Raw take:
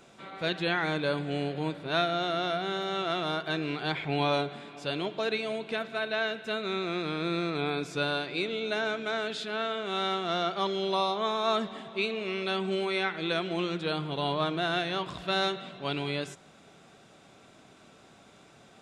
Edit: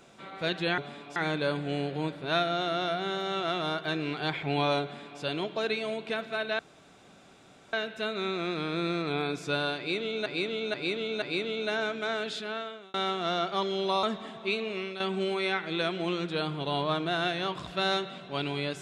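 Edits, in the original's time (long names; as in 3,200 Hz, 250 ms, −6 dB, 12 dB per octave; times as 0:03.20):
0:04.45–0:04.83: duplicate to 0:00.78
0:06.21: splice in room tone 1.14 s
0:08.26–0:08.74: repeat, 4 plays
0:09.41–0:09.98: fade out
0:11.07–0:11.54: remove
0:12.15–0:12.51: fade out equal-power, to −10.5 dB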